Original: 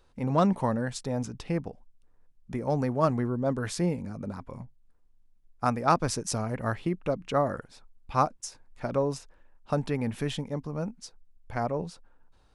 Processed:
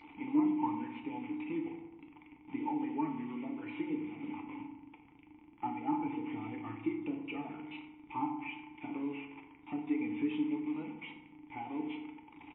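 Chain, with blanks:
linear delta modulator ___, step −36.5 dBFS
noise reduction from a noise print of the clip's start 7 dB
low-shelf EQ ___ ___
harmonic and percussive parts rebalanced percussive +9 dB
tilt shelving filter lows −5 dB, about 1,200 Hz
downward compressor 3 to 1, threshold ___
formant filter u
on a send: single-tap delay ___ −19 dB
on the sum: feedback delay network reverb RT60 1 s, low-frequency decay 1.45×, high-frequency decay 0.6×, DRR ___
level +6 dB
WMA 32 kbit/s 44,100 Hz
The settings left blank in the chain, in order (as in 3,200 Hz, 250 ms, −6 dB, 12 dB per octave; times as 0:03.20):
16 kbit/s, 170 Hz, +4.5 dB, −32 dBFS, 92 ms, 2.5 dB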